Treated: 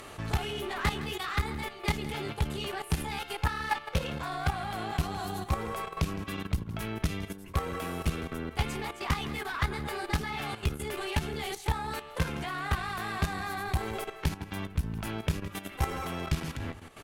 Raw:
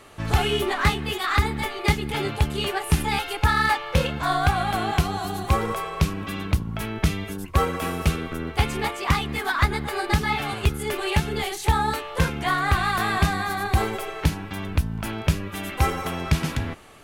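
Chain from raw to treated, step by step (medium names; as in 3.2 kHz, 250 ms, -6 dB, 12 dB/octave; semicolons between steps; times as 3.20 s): on a send: delay 163 ms -16 dB; on the sum: upward compressor, threshold -29 dBFS; valve stage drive 15 dB, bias 0.5; level held to a coarse grid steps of 11 dB; trim -2 dB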